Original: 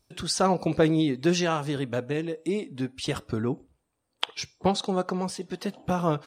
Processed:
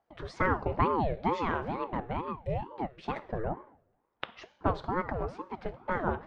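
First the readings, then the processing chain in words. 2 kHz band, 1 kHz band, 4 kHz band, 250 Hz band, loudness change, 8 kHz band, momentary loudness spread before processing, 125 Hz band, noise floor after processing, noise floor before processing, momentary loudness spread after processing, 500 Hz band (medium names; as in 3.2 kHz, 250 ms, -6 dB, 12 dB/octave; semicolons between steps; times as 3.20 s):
-1.5 dB, -0.5 dB, -17.0 dB, -9.5 dB, -5.5 dB, under -25 dB, 10 LU, -6.5 dB, -76 dBFS, -78 dBFS, 13 LU, -6.5 dB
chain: Chebyshev low-pass 1.6 kHz, order 2; two-slope reverb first 0.63 s, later 1.7 s, from -21 dB, DRR 12 dB; ring modulator with a swept carrier 480 Hz, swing 55%, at 2.2 Hz; trim -1.5 dB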